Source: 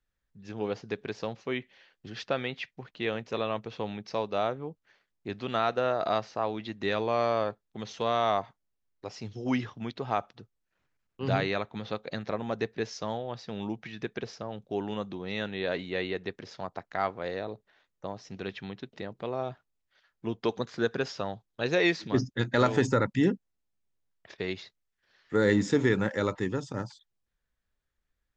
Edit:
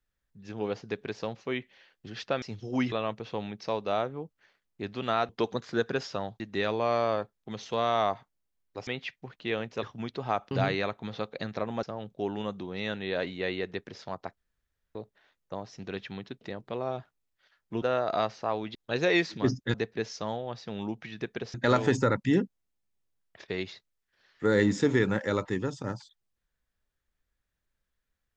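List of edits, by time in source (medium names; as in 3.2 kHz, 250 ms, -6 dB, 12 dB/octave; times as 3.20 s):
2.42–3.38 s: swap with 9.15–9.65 s
5.75–6.68 s: swap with 20.34–21.45 s
10.33–11.23 s: delete
12.55–14.35 s: move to 22.44 s
16.89–17.47 s: room tone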